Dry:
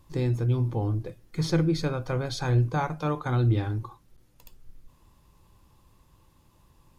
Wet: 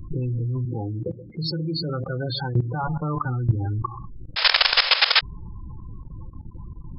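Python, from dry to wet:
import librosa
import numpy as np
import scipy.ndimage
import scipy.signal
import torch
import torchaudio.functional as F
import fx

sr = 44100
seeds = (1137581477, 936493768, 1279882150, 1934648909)

y = fx.env_lowpass(x, sr, base_hz=880.0, full_db=-20.0)
y = y + 10.0 ** (-19.5 / 20.0) * np.pad(y, (int(127 * sr / 1000.0), 0))[:len(y)]
y = fx.spec_topn(y, sr, count=16)
y = fx.high_shelf(y, sr, hz=2100.0, db=5.5)
y = fx.spec_paint(y, sr, seeds[0], shape='noise', start_s=4.36, length_s=0.85, low_hz=450.0, high_hz=5300.0, level_db=-20.0)
y = fx.peak_eq(y, sr, hz=510.0, db=-8.0, octaves=1.9)
y = fx.level_steps(y, sr, step_db=21)
y = fx.bessel_highpass(y, sr, hz=180.0, order=2, at=(0.65, 2.84))
y = fx.env_flatten(y, sr, amount_pct=50)
y = y * librosa.db_to_amplitude(6.5)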